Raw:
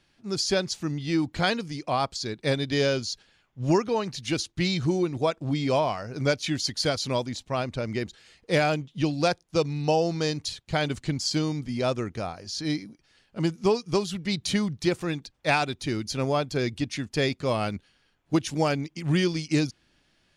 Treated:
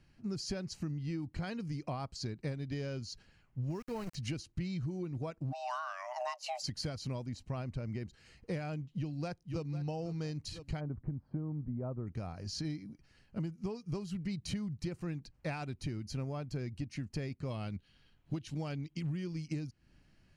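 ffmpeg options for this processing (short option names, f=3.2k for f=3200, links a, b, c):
-filter_complex "[0:a]asettb=1/sr,asplit=3[a][b][c];[a]atrim=end=3.704[d];[b]atrim=start=3.7:end=4.15,asetpts=PTS-STARTPTS,afade=t=in:d=0.004:c=qsin,afade=t=out:st=0.446:d=0.004:c=qsin,aeval=exprs='val(0)*gte(abs(val(0)),0.0282)':c=same[e];[c]atrim=start=4.146[f];[d][e]acrossfade=d=0.004:c1=hsin:c2=qsin[g];[g][f]acrossfade=d=0.004:c1=qsin:c2=hsin,asplit=3[h][i][j];[h]afade=t=out:st=5.51:d=0.02[k];[i]afreqshift=490,afade=t=in:st=5.51:d=0.02,afade=t=out:st=6.62:d=0.02[l];[j]afade=t=in:st=6.62:d=0.02[m];[k][l][m]amix=inputs=3:normalize=0,asplit=2[n][o];[o]afade=t=in:st=8.92:d=0.01,afade=t=out:st=9.63:d=0.01,aecho=0:1:500|1000|1500:0.199526|0.0598579|0.0179574[p];[n][p]amix=inputs=2:normalize=0,asplit=3[q][r][s];[q]afade=t=out:st=10.79:d=0.02[t];[r]lowpass=f=1.2k:w=0.5412,lowpass=f=1.2k:w=1.3066,afade=t=in:st=10.79:d=0.02,afade=t=out:st=12.06:d=0.02[u];[s]afade=t=in:st=12.06:d=0.02[v];[t][u][v]amix=inputs=3:normalize=0,asettb=1/sr,asplit=3[w][x][y];[w]atrim=end=17.504[z];[x]atrim=start=17.5:end=19.07,asetpts=PTS-STARTPTS,afade=t=in:d=0.004:c=qsin,afade=t=out:st=1.566:d=0.004:c=qsin,equalizer=f=3.5k:t=o:w=0.52:g=12[aa];[y]atrim=start=19.066[ab];[z][aa]acrossfade=d=0.004:c1=hsin:c2=qsin[ac];[ac][ab]acrossfade=d=0.004:c1=qsin:c2=hsin,bass=f=250:g=12,treble=f=4k:g=-3,bandreject=f=3.5k:w=5,acompressor=threshold=-30dB:ratio=10,volume=-5dB"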